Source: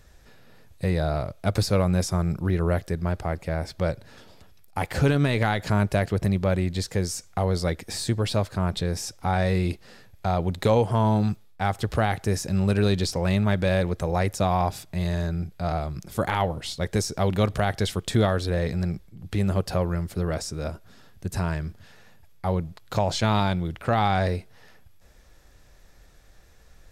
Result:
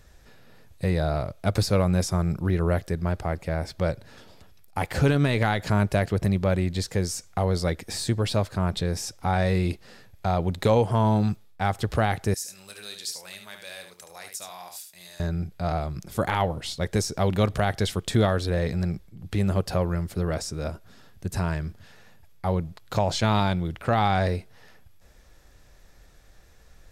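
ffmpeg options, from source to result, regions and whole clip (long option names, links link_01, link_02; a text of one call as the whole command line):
ffmpeg -i in.wav -filter_complex "[0:a]asettb=1/sr,asplit=3[link_01][link_02][link_03];[link_01]atrim=end=12.344[link_04];[link_02]atrim=start=12.34:end=15.2,asetpts=PTS-STARTPTS,afade=type=in:duration=0.004:curve=qsin,afade=type=out:start_time=2.856:duration=0.004:curve=qsin,aderivative,asplit=2[link_05][link_06];[link_06]adelay=28,volume=-12dB[link_07];[link_05][link_07]amix=inputs=2:normalize=0,atrim=end_sample=126126,aecho=1:1:73:0.447,atrim=end_sample=126126[link_08];[link_03]atrim=start=15.196[link_09];[link_04][link_08]acrossfade=duration=0.004:curve1=hsin:curve2=qsin[link_10];[link_10][link_09]acrossfade=duration=0.004:curve1=qsin:curve2=hsin" out.wav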